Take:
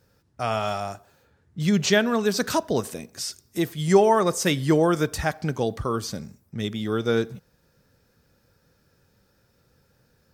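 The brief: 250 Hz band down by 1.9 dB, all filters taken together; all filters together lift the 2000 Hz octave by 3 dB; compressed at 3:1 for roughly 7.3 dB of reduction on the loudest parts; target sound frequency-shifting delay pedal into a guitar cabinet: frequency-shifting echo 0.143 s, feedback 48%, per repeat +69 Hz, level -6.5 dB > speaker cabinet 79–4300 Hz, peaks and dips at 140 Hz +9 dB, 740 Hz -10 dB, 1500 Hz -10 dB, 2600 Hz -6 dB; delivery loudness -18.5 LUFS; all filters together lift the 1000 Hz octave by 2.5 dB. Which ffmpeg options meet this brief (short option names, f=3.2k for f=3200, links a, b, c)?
-filter_complex "[0:a]equalizer=f=250:t=o:g=-5,equalizer=f=1k:t=o:g=6.5,equalizer=f=2k:t=o:g=8.5,acompressor=threshold=-20dB:ratio=3,asplit=7[a][b][c][d][e][f][g];[b]adelay=143,afreqshift=69,volume=-6.5dB[h];[c]adelay=286,afreqshift=138,volume=-12.9dB[i];[d]adelay=429,afreqshift=207,volume=-19.3dB[j];[e]adelay=572,afreqshift=276,volume=-25.6dB[k];[f]adelay=715,afreqshift=345,volume=-32dB[l];[g]adelay=858,afreqshift=414,volume=-38.4dB[m];[a][h][i][j][k][l][m]amix=inputs=7:normalize=0,highpass=79,equalizer=f=140:t=q:w=4:g=9,equalizer=f=740:t=q:w=4:g=-10,equalizer=f=1.5k:t=q:w=4:g=-10,equalizer=f=2.6k:t=q:w=4:g=-6,lowpass=f=4.3k:w=0.5412,lowpass=f=4.3k:w=1.3066,volume=8dB"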